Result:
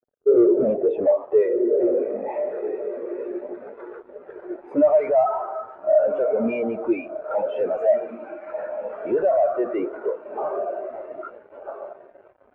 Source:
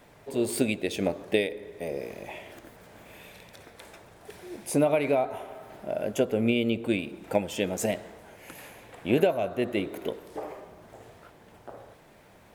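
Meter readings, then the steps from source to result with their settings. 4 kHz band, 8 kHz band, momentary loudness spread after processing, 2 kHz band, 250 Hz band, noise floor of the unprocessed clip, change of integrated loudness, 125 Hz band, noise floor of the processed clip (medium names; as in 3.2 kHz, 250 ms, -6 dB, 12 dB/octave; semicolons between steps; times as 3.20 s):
under -15 dB, under -40 dB, 19 LU, -5.0 dB, +3.5 dB, -55 dBFS, +6.0 dB, under -10 dB, -53 dBFS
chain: band-pass sweep 450 Hz -> 1.3 kHz, 0.23–1.48 s; on a send: echo that smears into a reverb 1395 ms, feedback 53%, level -12 dB; on the sum: fuzz box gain 58 dB, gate -56 dBFS; treble shelf 3.2 kHz -9.5 dB; spectral contrast expander 2.5:1; trim +3.5 dB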